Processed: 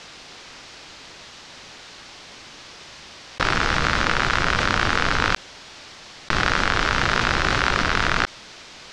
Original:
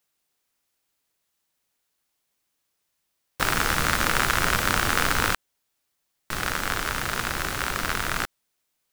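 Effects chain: LPF 5500 Hz 24 dB/oct; fast leveller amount 100%

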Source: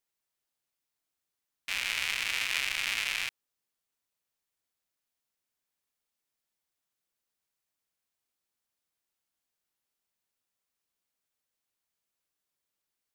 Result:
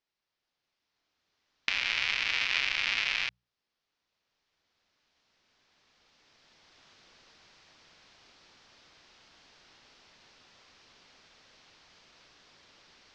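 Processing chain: recorder AGC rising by 8.3 dB/s; steep low-pass 5500 Hz 36 dB/oct; notches 60/120/180 Hz; gain +2 dB

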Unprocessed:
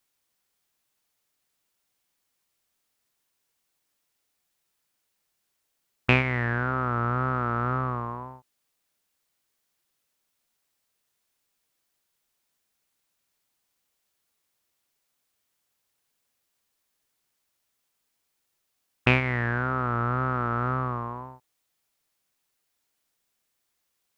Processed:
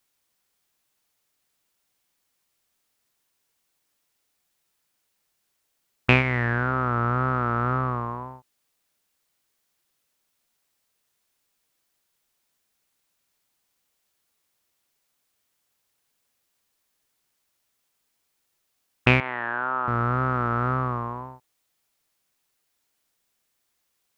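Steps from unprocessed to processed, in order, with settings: 19.2–19.88 speaker cabinet 450–3300 Hz, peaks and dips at 460 Hz -7 dB, 900 Hz +5 dB, 2100 Hz -9 dB; gain +2.5 dB

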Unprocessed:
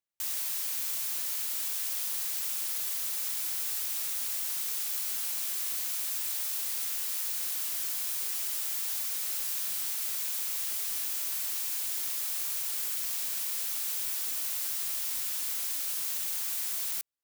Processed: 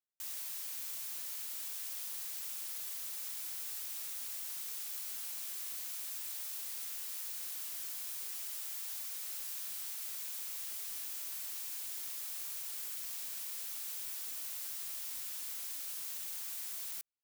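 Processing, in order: 8.42–10.1 tone controls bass -12 dB, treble 0 dB; gain -9 dB

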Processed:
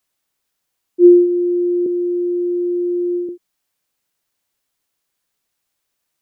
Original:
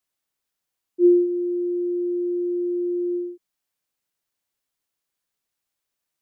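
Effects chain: 1.86–3.29 HPF 310 Hz; gain +7.5 dB

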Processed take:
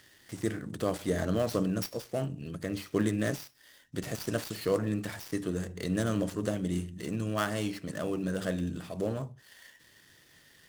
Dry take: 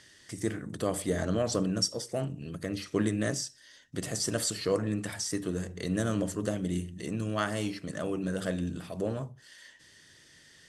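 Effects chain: switching dead time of 0.066 ms

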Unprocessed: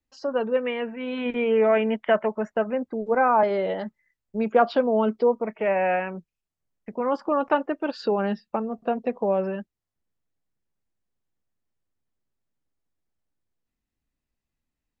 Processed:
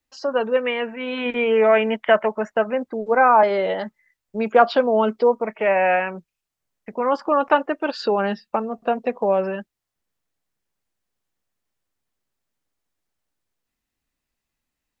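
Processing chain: low shelf 440 Hz -9 dB; gain +7.5 dB

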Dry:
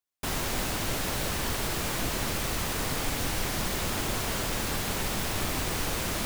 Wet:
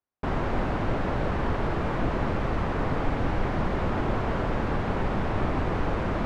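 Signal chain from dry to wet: LPF 1300 Hz 12 dB/oct; gain +6 dB

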